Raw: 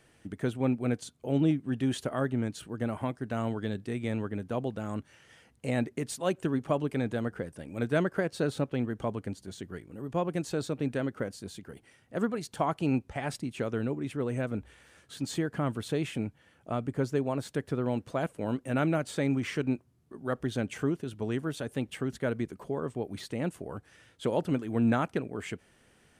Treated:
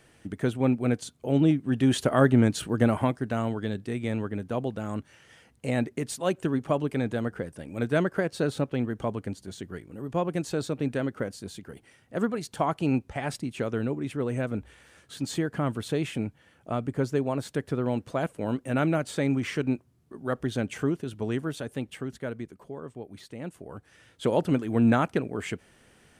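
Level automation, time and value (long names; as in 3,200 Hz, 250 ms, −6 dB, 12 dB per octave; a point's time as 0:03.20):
0:01.58 +4 dB
0:02.28 +10.5 dB
0:02.81 +10.5 dB
0:03.48 +2.5 dB
0:21.36 +2.5 dB
0:22.65 −6 dB
0:23.39 −6 dB
0:24.29 +4.5 dB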